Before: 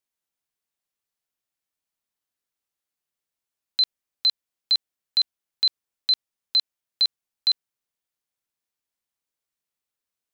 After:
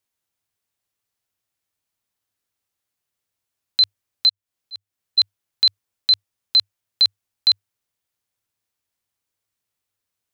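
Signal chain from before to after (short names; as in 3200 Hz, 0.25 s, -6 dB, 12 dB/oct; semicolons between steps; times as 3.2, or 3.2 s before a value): bell 100 Hz +12.5 dB 0.38 oct; 4.29–5.18 auto swell 0.329 s; gain +5 dB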